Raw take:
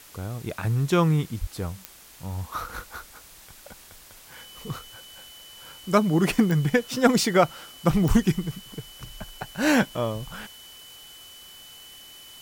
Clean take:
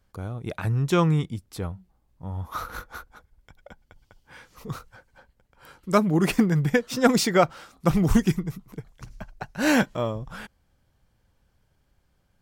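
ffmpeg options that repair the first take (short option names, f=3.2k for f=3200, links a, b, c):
-filter_complex "[0:a]adeclick=t=4,bandreject=f=3k:w=30,asplit=3[a][b][c];[a]afade=t=out:st=1.4:d=0.02[d];[b]highpass=f=140:w=0.5412,highpass=f=140:w=1.3066,afade=t=in:st=1.4:d=0.02,afade=t=out:st=1.52:d=0.02[e];[c]afade=t=in:st=1.52:d=0.02[f];[d][e][f]amix=inputs=3:normalize=0,afwtdn=0.004"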